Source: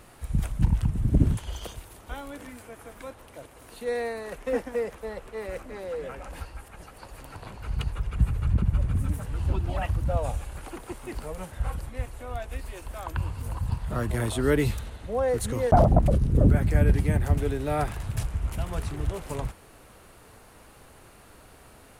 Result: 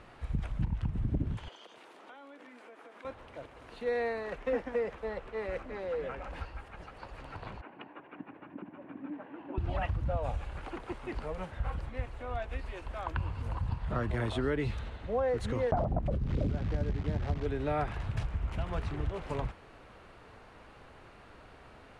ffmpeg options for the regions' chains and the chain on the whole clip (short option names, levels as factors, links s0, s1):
-filter_complex "[0:a]asettb=1/sr,asplit=3[s0][s1][s2];[s0]atrim=end=1.484[s3];[s1]atrim=start=1.48:end=3.05,asetpts=PTS-STARTPTS,afade=t=in:d=0.004:c=qsin,afade=t=out:st=1.566:d=0.004:c=qsin,highpass=f=250:w=0.5412,highpass=f=250:w=1.3066,acompressor=threshold=0.00501:ratio=10:attack=3.2:release=140:knee=1:detection=peak[s4];[s2]atrim=start=3.046[s5];[s3][s4]acrossfade=d=0.004:c1=hsin:c2=qsin[s6];[s6][s5]acrossfade=d=0.004:c1=qsin:c2=hsin,asettb=1/sr,asplit=3[s7][s8][s9];[s7]atrim=end=7.614[s10];[s8]atrim=start=7.61:end=9.58,asetpts=PTS-STARTPTS,afade=t=in:d=0.004:c=qsin,afade=t=out:st=1.966:d=0.004:c=qsin,acompressor=threshold=0.0562:ratio=2:attack=3.2:release=140:knee=1:detection=peak,highpass=f=280:w=0.5412,highpass=f=280:w=1.3066,equalizer=f=290:t=q:w=4:g=10,equalizer=f=450:t=q:w=4:g=-7,equalizer=f=1300:t=q:w=4:g=-9,equalizer=f=2100:t=q:w=4:g=-5,lowpass=f=2300:w=0.5412,lowpass=f=2300:w=1.3066[s11];[s9]atrim=start=9.576[s12];[s10][s11]acrossfade=d=0.004:c1=hsin:c2=qsin[s13];[s13][s12]acrossfade=d=0.004:c1=qsin:c2=hsin,asettb=1/sr,asplit=3[s14][s15][s16];[s14]atrim=end=16.274[s17];[s15]atrim=start=16.27:end=17.46,asetpts=PTS-STARTPTS,afade=t=in:d=0.004:c=qsin,afade=t=out:st=1.186:d=0.004:c=qsin,lowpass=1100,bandreject=f=59.22:t=h:w=4,bandreject=f=118.44:t=h:w=4,acrusher=bits=7:dc=4:mix=0:aa=0.000001[s18];[s16]atrim=start=17.456[s19];[s17][s18]acrossfade=d=0.004:c1=hsin:c2=qsin[s20];[s20][s19]acrossfade=d=0.004:c1=qsin:c2=hsin,lowpass=3300,acompressor=threshold=0.0562:ratio=6,lowshelf=f=470:g=-3"